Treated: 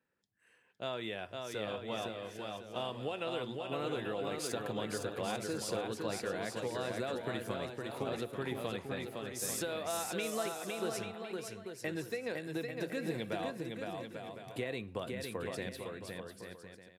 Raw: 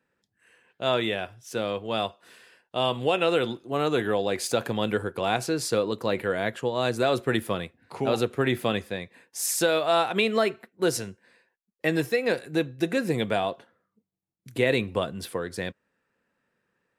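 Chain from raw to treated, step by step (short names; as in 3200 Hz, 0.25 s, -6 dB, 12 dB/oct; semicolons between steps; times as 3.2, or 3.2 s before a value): compressor, threshold -26 dBFS, peak gain reduction 8.5 dB; bouncing-ball echo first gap 0.51 s, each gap 0.65×, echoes 5; gain -8.5 dB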